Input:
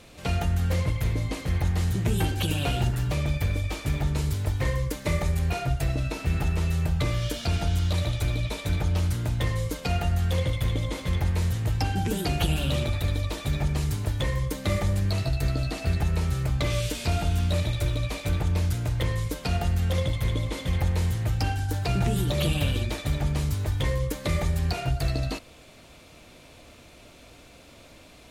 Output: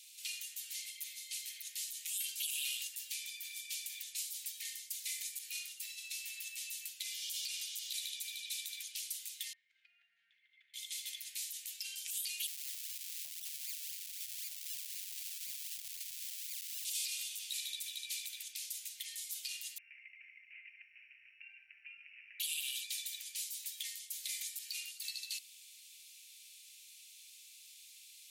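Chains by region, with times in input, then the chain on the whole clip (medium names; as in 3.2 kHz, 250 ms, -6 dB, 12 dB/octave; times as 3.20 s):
9.53–10.74 s: Chebyshev band-pass 170–1700 Hz, order 3 + bass shelf 200 Hz +5.5 dB + compression 12:1, threshold -35 dBFS
12.47–16.85 s: comb 7 ms, depth 96% + decimation with a swept rate 37× 3.9 Hz
19.78–22.40 s: compression 2.5:1, threshold -26 dBFS + careless resampling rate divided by 8×, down none, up filtered
whole clip: inverse Chebyshev high-pass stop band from 1.2 kHz, stop band 40 dB; differentiator; peak limiter -29.5 dBFS; trim +3 dB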